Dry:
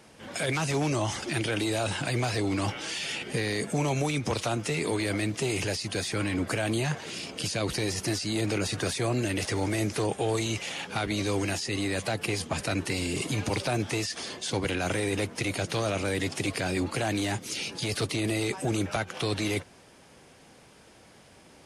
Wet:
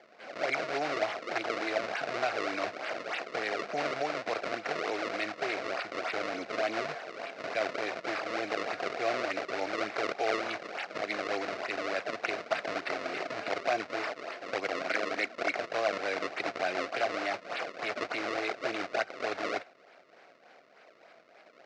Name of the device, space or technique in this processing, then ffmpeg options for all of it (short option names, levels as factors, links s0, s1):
circuit-bent sampling toy: -filter_complex "[0:a]asettb=1/sr,asplit=3[s0][s1][s2];[s0]atrim=end=14.754[s3];[s1]atrim=start=14.75:end=15.59,asetpts=PTS-STARTPTS,afade=t=in:d=0.004:c=qsin,afade=t=out:st=0.836:d=0.004:c=qsin,equalizer=f=125:t=o:w=1:g=-11,equalizer=f=250:t=o:w=1:g=7,equalizer=f=500:t=o:w=1:g=-4,equalizer=f=1000:t=o:w=1:g=-5,equalizer=f=2000:t=o:w=1:g=10,equalizer=f=4000:t=o:w=1:g=-12[s4];[s2]atrim=start=15.586[s5];[s3][s4]acrossfade=d=0.004:c1=hsin:c2=qsin[s6];[s6][s5]acrossfade=d=0.004:c1=qsin:c2=hsin,acrusher=samples=32:mix=1:aa=0.000001:lfo=1:lforange=51.2:lforate=3.4,highpass=560,equalizer=f=670:t=q:w=4:g=8,equalizer=f=940:t=q:w=4:g=-7,equalizer=f=1400:t=q:w=4:g=3,equalizer=f=2200:t=q:w=4:g=4,equalizer=f=3300:t=q:w=4:g=-6,lowpass=f=5100:w=0.5412,lowpass=f=5100:w=1.3066"